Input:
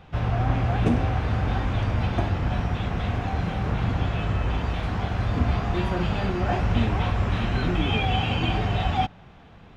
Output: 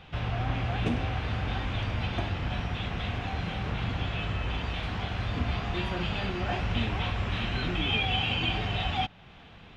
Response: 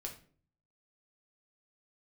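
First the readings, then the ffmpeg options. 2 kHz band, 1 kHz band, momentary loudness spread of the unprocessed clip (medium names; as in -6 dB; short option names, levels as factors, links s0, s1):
-1.0 dB, -6.0 dB, 4 LU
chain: -filter_complex "[0:a]equalizer=f=3100:t=o:w=1.5:g=9.5,asplit=2[s0][s1];[s1]acompressor=threshold=0.0178:ratio=6,volume=0.891[s2];[s0][s2]amix=inputs=2:normalize=0,volume=0.376"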